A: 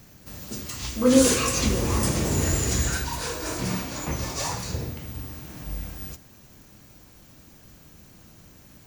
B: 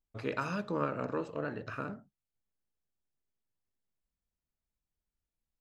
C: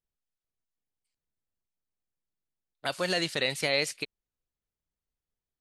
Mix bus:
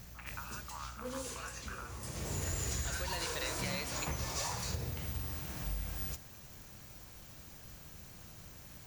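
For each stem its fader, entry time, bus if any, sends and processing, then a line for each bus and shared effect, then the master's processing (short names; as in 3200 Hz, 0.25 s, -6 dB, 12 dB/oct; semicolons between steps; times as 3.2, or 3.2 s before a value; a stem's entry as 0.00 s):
-0.5 dB, 0.00 s, no send, short-mantissa float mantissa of 2-bit; auto duck -21 dB, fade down 1.15 s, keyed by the second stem
0.0 dB, 0.00 s, no send, elliptic band-pass 810–3100 Hz; compressor, threshold -43 dBFS, peak gain reduction 12.5 dB
-5.0 dB, 0.00 s, no send, hum 60 Hz, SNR 11 dB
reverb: off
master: bell 270 Hz -7.5 dB 1.2 oct; compressor 6:1, threshold -34 dBFS, peak gain reduction 13 dB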